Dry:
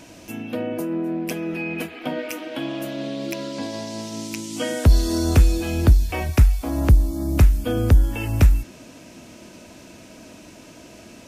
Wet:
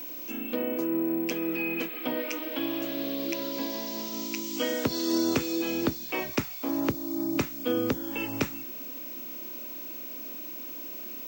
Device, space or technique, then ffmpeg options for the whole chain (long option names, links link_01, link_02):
old television with a line whistle: -af "highpass=frequency=180:width=0.5412,highpass=frequency=180:width=1.3066,equalizer=frequency=190:width_type=q:width=4:gain=-10,equalizer=frequency=700:width_type=q:width=4:gain=-8,equalizer=frequency=1600:width_type=q:width=4:gain=-4,lowpass=frequency=6900:width=0.5412,lowpass=frequency=6900:width=1.3066,aeval=exprs='val(0)+0.0178*sin(2*PI*15734*n/s)':channel_layout=same,volume=-1.5dB"